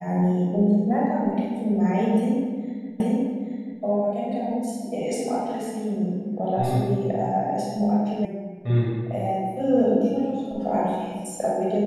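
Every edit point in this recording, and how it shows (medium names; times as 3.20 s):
3.00 s: repeat of the last 0.83 s
8.25 s: sound stops dead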